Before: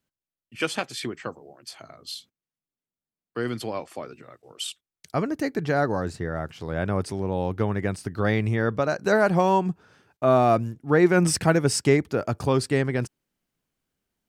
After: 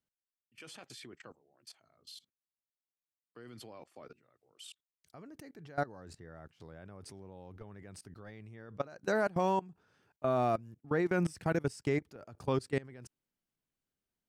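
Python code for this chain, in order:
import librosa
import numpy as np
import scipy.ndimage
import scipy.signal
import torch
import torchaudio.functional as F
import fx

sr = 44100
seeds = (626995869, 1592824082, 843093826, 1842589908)

y = fx.level_steps(x, sr, step_db=21)
y = F.gain(torch.from_numpy(y), -8.0).numpy()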